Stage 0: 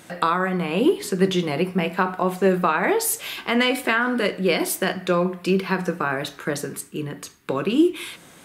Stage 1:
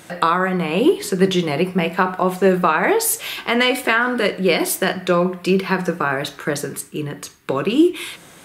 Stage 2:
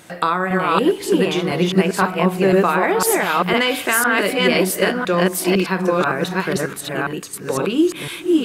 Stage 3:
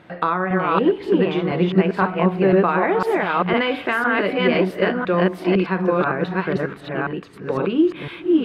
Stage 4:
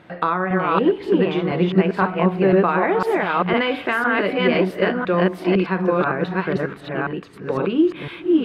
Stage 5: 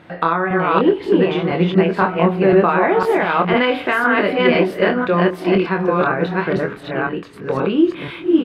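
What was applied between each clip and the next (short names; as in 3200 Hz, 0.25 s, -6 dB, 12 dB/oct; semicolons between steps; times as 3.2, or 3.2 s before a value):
bell 240 Hz -4 dB 0.39 oct; gain +4 dB
reverse delay 0.505 s, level 0 dB; gain -2 dB
air absorption 380 m
nothing audible
doubler 24 ms -6.5 dB; gain +2.5 dB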